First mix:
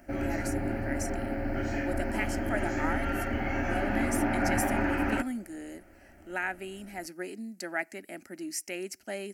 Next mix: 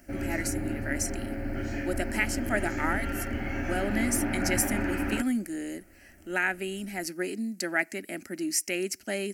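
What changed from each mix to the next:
speech +8.0 dB; master: add peaking EQ 840 Hz -7 dB 1.4 oct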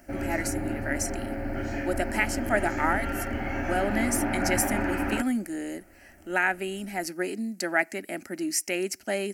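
master: add peaking EQ 840 Hz +7 dB 1.4 oct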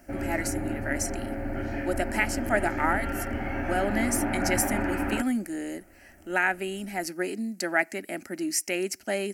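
background: add distance through air 140 m

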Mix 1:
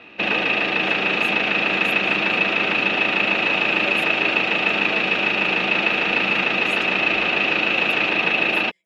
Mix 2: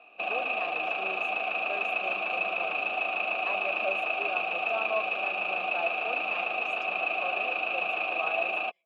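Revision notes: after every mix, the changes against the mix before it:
speech +11.0 dB; master: add vowel filter a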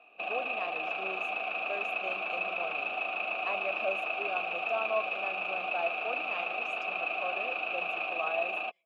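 first sound -4.0 dB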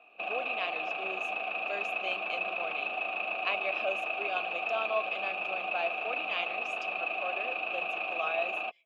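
speech: add frequency weighting D; second sound -7.5 dB

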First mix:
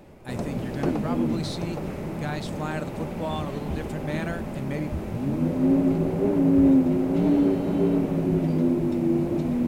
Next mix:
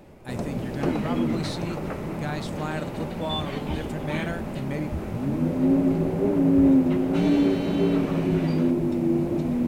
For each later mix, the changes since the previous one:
second sound +11.5 dB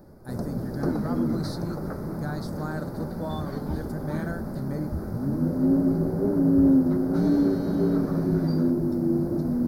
master: add FFT filter 210 Hz 0 dB, 1 kHz -5 dB, 1.5 kHz -1 dB, 2.8 kHz -29 dB, 4.7 kHz +1 dB, 7.6 kHz -10 dB, 11 kHz +3 dB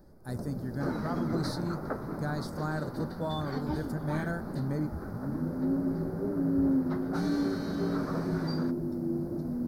first sound -8.0 dB; second sound +3.5 dB

